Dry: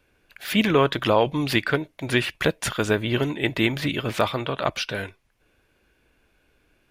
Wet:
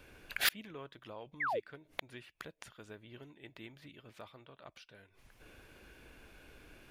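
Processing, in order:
gate with flip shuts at −22 dBFS, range −36 dB
sound drawn into the spectrogram fall, 0:01.40–0:01.60, 380–2,300 Hz −41 dBFS
level +7 dB

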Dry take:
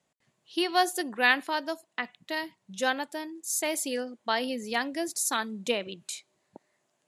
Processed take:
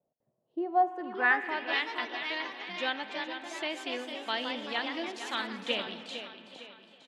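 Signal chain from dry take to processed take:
repeating echo 458 ms, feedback 45%, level −10 dB
spring reverb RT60 3.6 s, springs 45 ms, chirp 65 ms, DRR 12 dB
delay with pitch and tempo change per echo 634 ms, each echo +2 semitones, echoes 3, each echo −6 dB
low-pass filter sweep 600 Hz → 3,300 Hz, 0:00.64–0:01.78
level −7 dB

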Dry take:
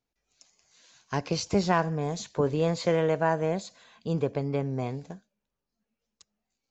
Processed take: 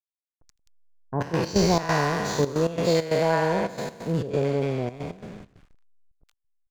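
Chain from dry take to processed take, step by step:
peak hold with a decay on every bin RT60 2.40 s
on a send: echo through a band-pass that steps 131 ms, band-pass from 1,100 Hz, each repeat 0.7 octaves, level −10.5 dB
on the sum: slack as between gear wheels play −34 dBFS
multiband delay without the direct sound lows, highs 80 ms, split 1,000 Hz
gate pattern ".x.xx.xxxxx" 135 BPM −12 dB
level +2 dB

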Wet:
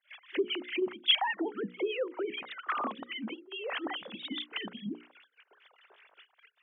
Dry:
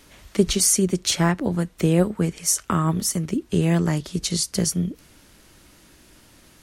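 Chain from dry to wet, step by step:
three sine waves on the formant tracks
downward compressor 6 to 1, threshold −28 dBFS, peak gain reduction 18.5 dB
noise gate −60 dBFS, range −16 dB
spectral tilt +4 dB per octave
echo ahead of the sound 57 ms −22.5 dB
dynamic equaliser 1,700 Hz, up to −4 dB, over −41 dBFS, Q 1.1
two-band tremolo in antiphase 4.9 Hz, depth 100%, crossover 1,200 Hz
mains-hum notches 60/120/180/240/300/360/420/480/540 Hz
level +6 dB

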